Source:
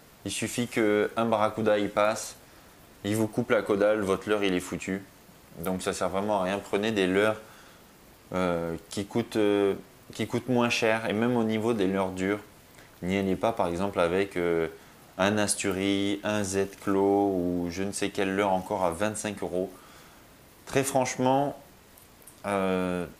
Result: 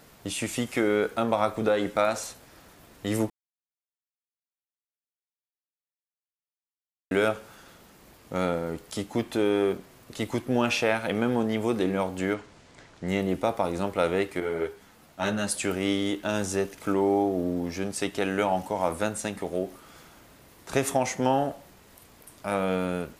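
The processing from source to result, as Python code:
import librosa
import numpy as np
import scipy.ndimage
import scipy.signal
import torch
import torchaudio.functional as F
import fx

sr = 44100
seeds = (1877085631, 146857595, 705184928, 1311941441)

y = fx.lowpass(x, sr, hz=7600.0, slope=24, at=(12.34, 13.08))
y = fx.ensemble(y, sr, at=(14.4, 15.52))
y = fx.edit(y, sr, fx.silence(start_s=3.3, length_s=3.81), tone=tone)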